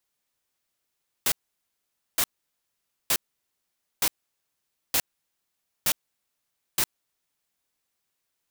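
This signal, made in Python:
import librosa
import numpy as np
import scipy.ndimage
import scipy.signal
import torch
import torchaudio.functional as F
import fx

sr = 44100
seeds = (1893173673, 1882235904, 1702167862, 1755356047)

y = fx.noise_burst(sr, seeds[0], colour='white', on_s=0.06, off_s=0.86, bursts=7, level_db=-22.5)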